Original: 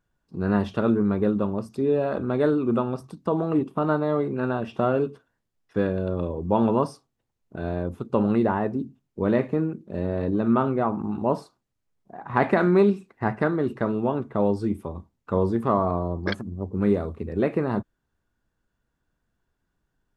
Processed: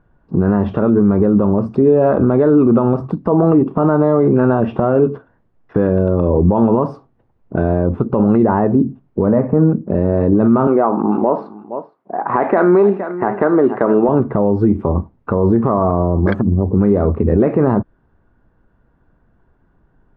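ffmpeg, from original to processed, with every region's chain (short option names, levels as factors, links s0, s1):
-filter_complex "[0:a]asettb=1/sr,asplit=3[s0][s1][s2];[s0]atrim=end=9.264[s3];[s1]atrim=start=9.26:end=9.87,asetpts=PTS-STARTPTS,afade=t=in:d=0.004:c=qsin,afade=t=out:st=0.606:d=0.004:c=qsin,lowpass=1400,equalizer=f=360:w=7.5:g=-14.5[s4];[s2]atrim=start=9.866[s5];[s3][s4]acrossfade=d=0.004:c1=hsin:c2=qsin[s6];[s6][s5]acrossfade=d=0.004:c1=qsin:c2=hsin,asettb=1/sr,asplit=3[s7][s8][s9];[s7]atrim=end=10.674[s10];[s8]atrim=start=10.67:end=14.09,asetpts=PTS-STARTPTS,afade=t=in:d=0.004:c=qsin,afade=t=out:st=3.416:d=0.004:c=qsin,highpass=330,lowpass=4000,aecho=1:1:466:0.1,atrim=end_sample=150822[s11];[s9]atrim=start=14.086[s12];[s10][s11]acrossfade=d=0.004:c1=hsin:c2=qsin[s13];[s13][s12]acrossfade=d=0.004:c1=qsin:c2=hsin,acompressor=threshold=0.0562:ratio=6,lowpass=1200,alimiter=level_in=14.1:limit=0.891:release=50:level=0:latency=1,volume=0.708"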